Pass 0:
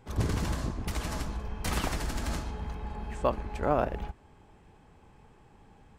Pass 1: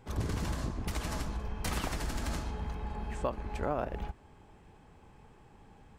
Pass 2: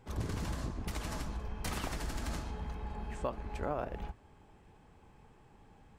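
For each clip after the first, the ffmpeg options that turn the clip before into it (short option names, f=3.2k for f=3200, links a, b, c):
-af "acompressor=threshold=-31dB:ratio=2.5"
-af "flanger=delay=1.8:depth=7.4:regen=-86:speed=1.4:shape=triangular,volume=1.5dB"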